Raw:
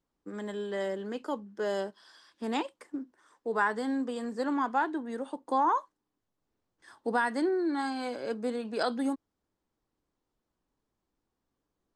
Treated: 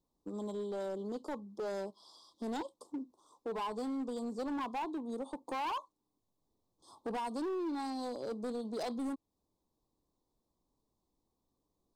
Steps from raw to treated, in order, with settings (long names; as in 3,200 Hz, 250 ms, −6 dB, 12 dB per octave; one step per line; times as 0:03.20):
elliptic band-stop filter 1,100–3,600 Hz, stop band 40 dB
in parallel at +3 dB: downward compressor 6 to 1, threshold −41 dBFS, peak gain reduction 16.5 dB
on the sum: gain into a clipping stage and back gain 27.5 dB
level −6.5 dB